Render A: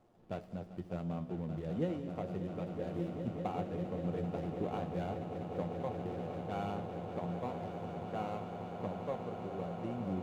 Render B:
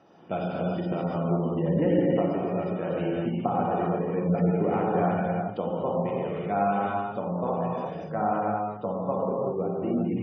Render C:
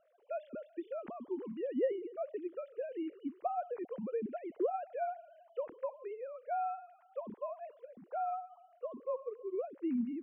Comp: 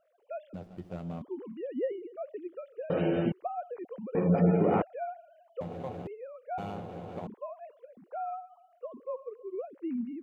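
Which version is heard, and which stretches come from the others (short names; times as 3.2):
C
0.54–1.22 from A
2.9–3.32 from B
4.15–4.82 from B
5.61–6.07 from A
6.58–7.27 from A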